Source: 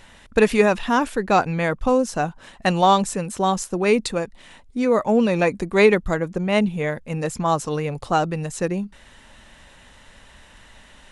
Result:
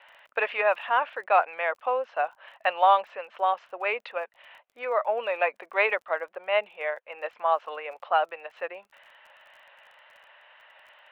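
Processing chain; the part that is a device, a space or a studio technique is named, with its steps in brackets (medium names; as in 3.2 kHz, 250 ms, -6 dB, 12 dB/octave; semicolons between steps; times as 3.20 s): elliptic band-pass 590–2900 Hz, stop band 60 dB; lo-fi chain (low-pass 5.6 kHz 12 dB/octave; wow and flutter 19 cents; crackle 25 per s -45 dBFS); trim -2 dB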